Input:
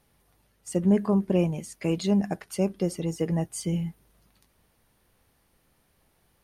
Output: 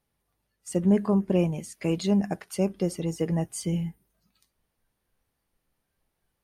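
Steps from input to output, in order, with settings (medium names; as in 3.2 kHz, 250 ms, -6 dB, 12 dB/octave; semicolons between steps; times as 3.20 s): spectral noise reduction 12 dB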